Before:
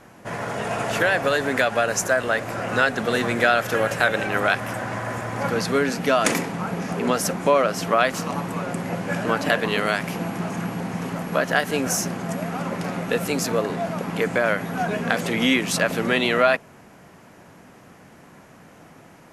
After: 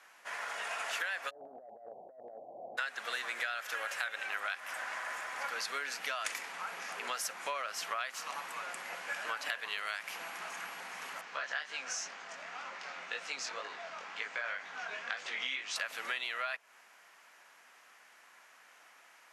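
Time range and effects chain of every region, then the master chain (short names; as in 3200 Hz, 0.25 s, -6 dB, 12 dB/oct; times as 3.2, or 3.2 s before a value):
1.29–2.77 spectral whitening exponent 0.6 + steep low-pass 750 Hz 72 dB/oct + negative-ratio compressor -28 dBFS, ratio -0.5
11.21–15.76 LPF 6600 Hz 24 dB/oct + chorus 2 Hz, delay 18.5 ms, depth 5.7 ms
whole clip: HPF 1400 Hz 12 dB/oct; high shelf 7600 Hz -6 dB; compressor 6:1, threshold -30 dBFS; gain -3.5 dB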